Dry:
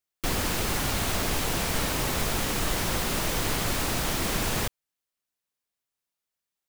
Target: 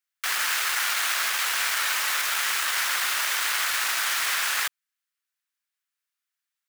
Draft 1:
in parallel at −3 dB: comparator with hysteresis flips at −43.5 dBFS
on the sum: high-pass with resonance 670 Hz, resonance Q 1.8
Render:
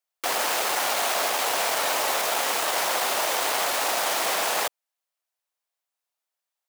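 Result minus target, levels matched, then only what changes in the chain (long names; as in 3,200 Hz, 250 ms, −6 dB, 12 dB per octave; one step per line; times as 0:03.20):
500 Hz band +18.0 dB
change: high-pass with resonance 1,500 Hz, resonance Q 1.8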